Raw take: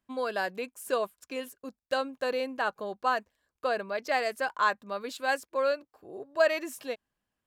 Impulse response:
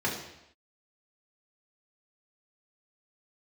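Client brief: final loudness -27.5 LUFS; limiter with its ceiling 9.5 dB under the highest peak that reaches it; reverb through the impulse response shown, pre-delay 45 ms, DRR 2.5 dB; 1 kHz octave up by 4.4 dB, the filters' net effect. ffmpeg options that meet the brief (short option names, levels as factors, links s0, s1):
-filter_complex "[0:a]equalizer=f=1000:t=o:g=5.5,alimiter=limit=0.112:level=0:latency=1,asplit=2[s0][s1];[1:a]atrim=start_sample=2205,adelay=45[s2];[s1][s2]afir=irnorm=-1:irlink=0,volume=0.251[s3];[s0][s3]amix=inputs=2:normalize=0,volume=1.33"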